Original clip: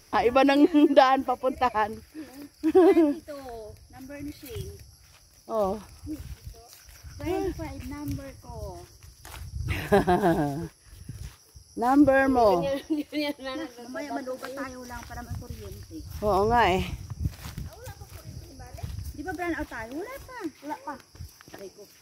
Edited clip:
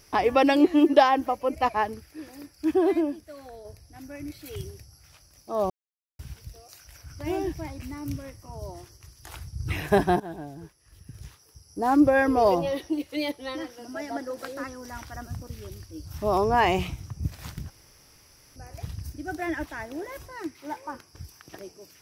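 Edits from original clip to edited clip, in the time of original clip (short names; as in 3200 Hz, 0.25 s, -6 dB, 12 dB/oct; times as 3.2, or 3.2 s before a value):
2.74–3.65 gain -4.5 dB
5.7–6.19 mute
10.2–11.79 fade in, from -18 dB
17.7–18.56 room tone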